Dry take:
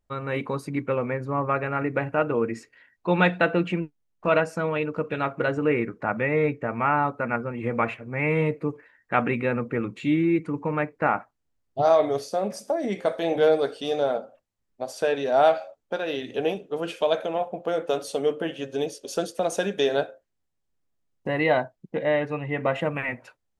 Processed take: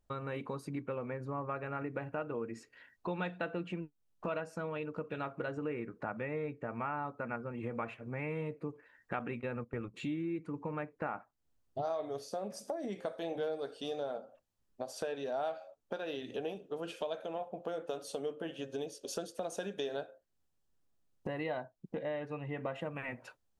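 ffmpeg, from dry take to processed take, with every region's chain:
-filter_complex "[0:a]asettb=1/sr,asplit=3[a][b][c];[a]atrim=end=9.194[d];[b]atrim=start=9.19:end=9.94,asetpts=PTS-STARTPTS,afade=t=in:d=0.004:c=qsin,afade=t=out:st=0.746:d=0.004:c=qsin,agate=range=-15dB:threshold=-30dB:ratio=16:release=100:detection=peak,asubboost=boost=9.5:cutoff=120[e];[c]atrim=start=9.936[f];[d][e]acrossfade=d=0.004:c1=hsin:c2=qsin[g];[g][f]acrossfade=d=0.004:c1=qsin:c2=hsin,equalizer=f=2.1k:t=o:w=0.38:g=-5,acompressor=threshold=-40dB:ratio=3"

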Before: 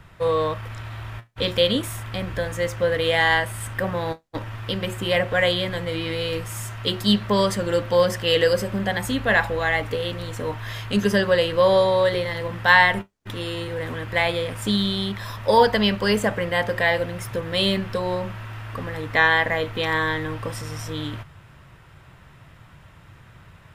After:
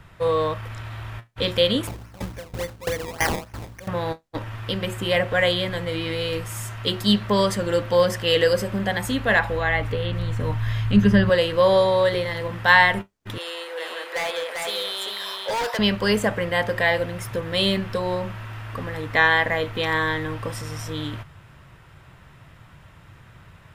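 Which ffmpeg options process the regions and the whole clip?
-filter_complex "[0:a]asettb=1/sr,asplit=3[a][b][c];[a]atrim=end=1.874[d];[b]atrim=start=1.87:end=3.88,asetpts=PTS-STARTPTS,afade=t=in:d=0.004:c=qsin,afade=t=out:st=2.006:d=0.004:c=qsin,acrusher=samples=21:mix=1:aa=0.000001:lfo=1:lforange=21:lforate=3.5,aeval=exprs='val(0)+0.0224*(sin(2*PI*60*n/s)+sin(2*PI*2*60*n/s)/2+sin(2*PI*3*60*n/s)/3+sin(2*PI*4*60*n/s)/4+sin(2*PI*5*60*n/s)/5)':c=same,aeval=exprs='val(0)*pow(10,-20*if(lt(mod(3*n/s,1),2*abs(3)/1000),1-mod(3*n/s,1)/(2*abs(3)/1000),(mod(3*n/s,1)-2*abs(3)/1000)/(1-2*abs(3)/1000))/20)':c=same[e];[c]atrim=start=3.876[f];[d][e]acrossfade=d=0.004:c1=hsin:c2=qsin[g];[g][f]acrossfade=d=0.004:c1=qsin:c2=hsin,asettb=1/sr,asplit=3[h][i][j];[h]atrim=end=9.394[k];[i]atrim=start=9.39:end=11.3,asetpts=PTS-STARTPTS,afade=t=in:d=0.004:c=qsin,afade=t=out:st=1.906:d=0.004:c=qsin,acrossover=split=3700[l][m];[m]acompressor=threshold=-49dB:ratio=4:attack=1:release=60[n];[l][n]amix=inputs=2:normalize=0,asubboost=boost=9:cutoff=180[o];[j]atrim=start=11.296[p];[k][o]acrossfade=d=0.004:c1=hsin:c2=qsin[q];[q][p]acrossfade=d=0.004:c1=qsin:c2=hsin,asettb=1/sr,asplit=3[r][s][t];[r]atrim=end=13.384[u];[s]atrim=start=13.38:end=15.79,asetpts=PTS-STARTPTS,afade=t=in:d=0.004:c=qsin,afade=t=out:st=2.406:d=0.004:c=qsin,highpass=f=490:w=0.5412,highpass=f=490:w=1.3066,volume=23dB,asoftclip=hard,volume=-23dB,aecho=1:1:394:0.668,atrim=end_sample=106281[v];[t]atrim=start=15.786[w];[u][v]acrossfade=d=0.004:c1=hsin:c2=qsin[x];[x][w]acrossfade=d=0.004:c1=qsin:c2=hsin"

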